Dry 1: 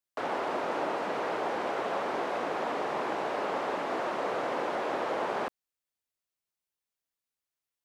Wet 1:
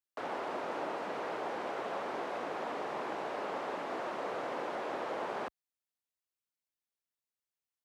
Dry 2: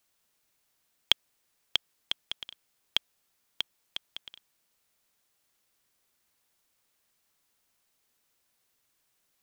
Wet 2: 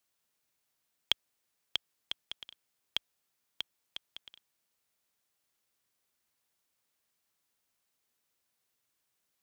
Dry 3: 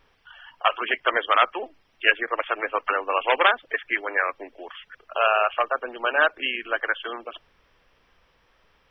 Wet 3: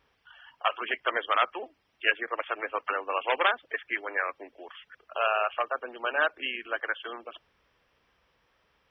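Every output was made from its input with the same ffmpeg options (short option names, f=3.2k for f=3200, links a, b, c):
-af "highpass=49,volume=-6dB"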